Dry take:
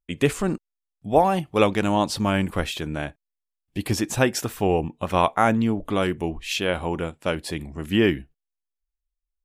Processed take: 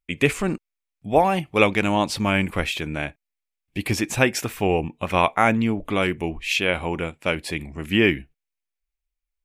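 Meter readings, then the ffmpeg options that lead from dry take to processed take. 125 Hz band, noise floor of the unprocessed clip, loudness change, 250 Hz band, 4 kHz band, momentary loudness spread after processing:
0.0 dB, -85 dBFS, +1.0 dB, 0.0 dB, +2.5 dB, 11 LU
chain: -af "equalizer=f=2300:w=2.6:g=9.5"

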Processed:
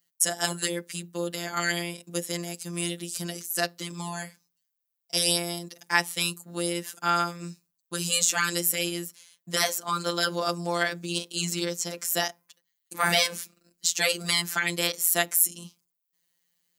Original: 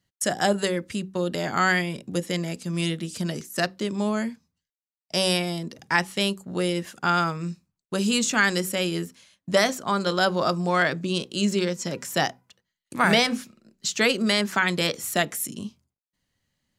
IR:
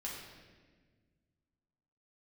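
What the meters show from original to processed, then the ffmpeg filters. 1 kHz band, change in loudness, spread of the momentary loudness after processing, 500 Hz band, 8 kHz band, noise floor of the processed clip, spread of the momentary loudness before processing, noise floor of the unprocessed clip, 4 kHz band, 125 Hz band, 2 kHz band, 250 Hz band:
-4.5 dB, -2.0 dB, 13 LU, -6.5 dB, +5.0 dB, -81 dBFS, 9 LU, under -85 dBFS, -0.5 dB, -6.5 dB, -3.5 dB, -8.5 dB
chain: -af "afftfilt=real='hypot(re,im)*cos(PI*b)':imag='0':win_size=1024:overlap=0.75,aemphasis=mode=production:type=bsi,volume=0.891"

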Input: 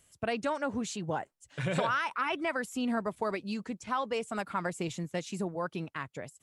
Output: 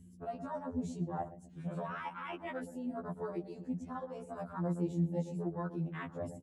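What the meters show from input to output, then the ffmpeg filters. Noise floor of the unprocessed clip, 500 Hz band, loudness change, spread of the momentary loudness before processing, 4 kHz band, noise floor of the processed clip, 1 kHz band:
-74 dBFS, -6.5 dB, -5.5 dB, 7 LU, -18.0 dB, -56 dBFS, -9.0 dB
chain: -filter_complex "[0:a]alimiter=level_in=1.06:limit=0.0631:level=0:latency=1,volume=0.944,areverse,acompressor=threshold=0.00794:ratio=20,areverse,lowshelf=f=120:g=8,flanger=delay=1:depth=4.8:regen=-23:speed=1.6:shape=sinusoidal,aeval=exprs='val(0)+0.00126*(sin(2*PI*60*n/s)+sin(2*PI*2*60*n/s)/2+sin(2*PI*3*60*n/s)/3+sin(2*PI*4*60*n/s)/4+sin(2*PI*5*60*n/s)/5)':c=same,highpass=f=58:w=0.5412,highpass=f=58:w=1.3066,tiltshelf=f=1400:g=5.5,asplit=2[s0][s1];[s1]adelay=120,lowpass=f=1100:p=1,volume=0.355,asplit=2[s2][s3];[s3]adelay=120,lowpass=f=1100:p=1,volume=0.45,asplit=2[s4][s5];[s5]adelay=120,lowpass=f=1100:p=1,volume=0.45,asplit=2[s6][s7];[s7]adelay=120,lowpass=f=1100:p=1,volume=0.45,asplit=2[s8][s9];[s9]adelay=120,lowpass=f=1100:p=1,volume=0.45[s10];[s2][s4][s6][s8][s10]amix=inputs=5:normalize=0[s11];[s0][s11]amix=inputs=2:normalize=0,crystalizer=i=3.5:c=0,afwtdn=0.00398,afftfilt=real='re*2*eq(mod(b,4),0)':imag='im*2*eq(mod(b,4),0)':win_size=2048:overlap=0.75,volume=2.37"

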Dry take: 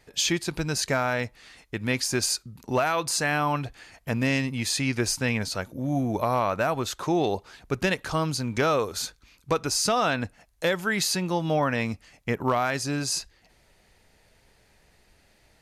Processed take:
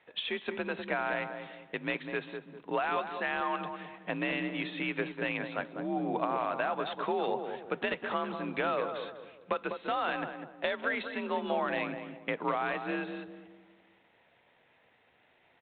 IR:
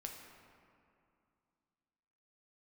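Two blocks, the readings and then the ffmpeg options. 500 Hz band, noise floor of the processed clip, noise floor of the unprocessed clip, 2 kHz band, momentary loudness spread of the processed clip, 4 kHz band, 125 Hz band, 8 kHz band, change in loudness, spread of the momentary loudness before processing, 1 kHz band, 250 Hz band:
-6.0 dB, -67 dBFS, -62 dBFS, -5.0 dB, 9 LU, -11.5 dB, -16.5 dB, under -40 dB, -7.5 dB, 8 LU, -5.0 dB, -8.5 dB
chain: -filter_complex "[0:a]highpass=f=520:p=1,afreqshift=46,acompressor=threshold=0.0398:ratio=5,highshelf=f=2900:g=-4,asplit=2[s0][s1];[s1]adelay=199,lowpass=f=910:p=1,volume=0.562,asplit=2[s2][s3];[s3]adelay=199,lowpass=f=910:p=1,volume=0.43,asplit=2[s4][s5];[s5]adelay=199,lowpass=f=910:p=1,volume=0.43,asplit=2[s6][s7];[s7]adelay=199,lowpass=f=910:p=1,volume=0.43,asplit=2[s8][s9];[s9]adelay=199,lowpass=f=910:p=1,volume=0.43[s10];[s0][s2][s4][s6][s8][s10]amix=inputs=6:normalize=0,asplit=2[s11][s12];[1:a]atrim=start_sample=2205,asetrate=61740,aresample=44100,highshelf=f=5100:g=5[s13];[s12][s13]afir=irnorm=-1:irlink=0,volume=0.224[s14];[s11][s14]amix=inputs=2:normalize=0" -ar 8000 -c:a adpcm_g726 -b:a 32k

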